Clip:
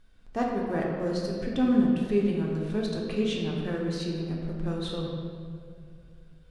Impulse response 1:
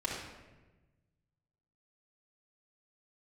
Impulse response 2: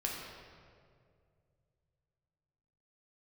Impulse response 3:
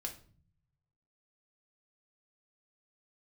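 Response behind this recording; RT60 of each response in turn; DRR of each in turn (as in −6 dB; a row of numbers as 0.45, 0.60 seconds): 2; 1.2, 2.2, 0.45 seconds; −6.0, −3.0, 1.0 decibels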